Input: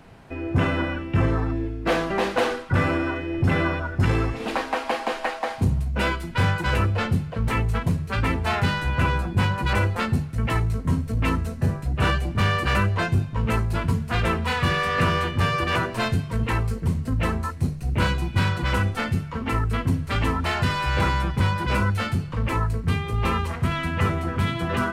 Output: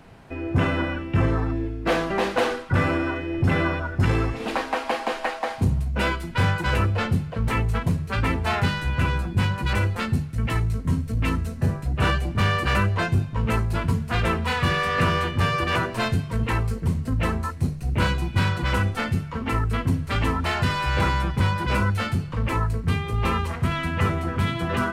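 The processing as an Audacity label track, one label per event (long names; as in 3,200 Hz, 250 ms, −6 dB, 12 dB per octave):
8.680000	11.560000	parametric band 770 Hz −4.5 dB 2.1 octaves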